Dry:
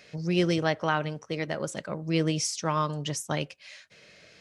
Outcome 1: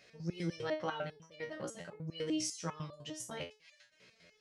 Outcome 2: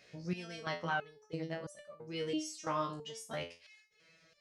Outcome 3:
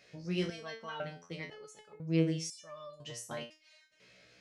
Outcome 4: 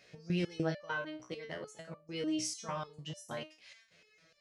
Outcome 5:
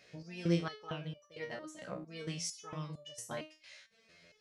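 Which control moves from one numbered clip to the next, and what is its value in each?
stepped resonator, rate: 10, 3, 2, 6.7, 4.4 Hz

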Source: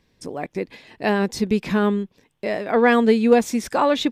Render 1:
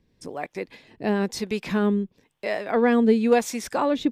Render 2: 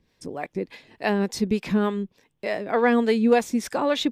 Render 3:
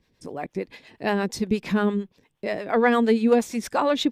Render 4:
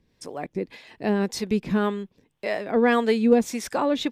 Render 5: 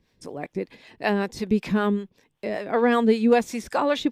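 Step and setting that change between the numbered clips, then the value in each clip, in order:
harmonic tremolo, rate: 1, 3.4, 8.6, 1.8, 5.2 Hz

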